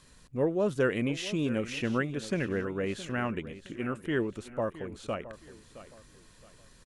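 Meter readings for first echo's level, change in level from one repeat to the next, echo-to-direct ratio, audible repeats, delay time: -15.0 dB, -10.0 dB, -14.5 dB, 3, 0.667 s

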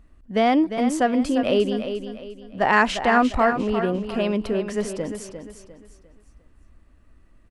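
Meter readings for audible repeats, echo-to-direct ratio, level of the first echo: 3, -8.5 dB, -9.0 dB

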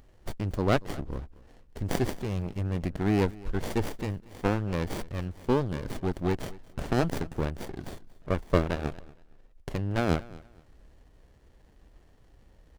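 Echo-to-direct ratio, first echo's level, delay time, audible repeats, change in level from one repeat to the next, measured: -20.5 dB, -21.0 dB, 0.233 s, 2, -12.0 dB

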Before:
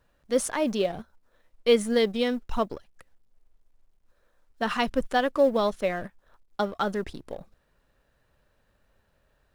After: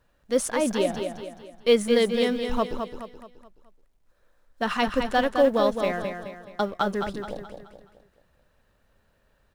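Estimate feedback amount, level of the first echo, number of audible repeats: 43%, -6.5 dB, 4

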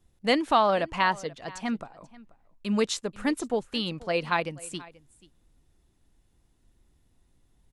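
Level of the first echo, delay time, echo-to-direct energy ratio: -21.0 dB, 0.484 s, -21.0 dB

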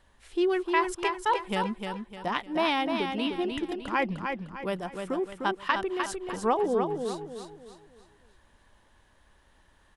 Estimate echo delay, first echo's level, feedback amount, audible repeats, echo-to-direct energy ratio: 0.303 s, -5.5 dB, 38%, 4, -5.0 dB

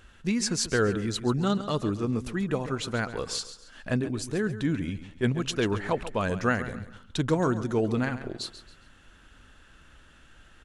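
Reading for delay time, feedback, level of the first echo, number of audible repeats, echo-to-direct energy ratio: 0.137 s, 34%, -13.0 dB, 3, -12.5 dB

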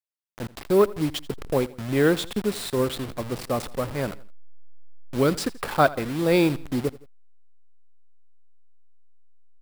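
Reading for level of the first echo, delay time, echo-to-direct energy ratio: -20.0 dB, 83 ms, -19.0 dB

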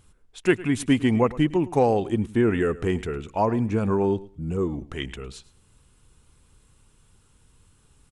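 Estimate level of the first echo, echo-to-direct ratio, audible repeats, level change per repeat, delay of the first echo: -19.0 dB, -19.0 dB, 2, -15.0 dB, 0.107 s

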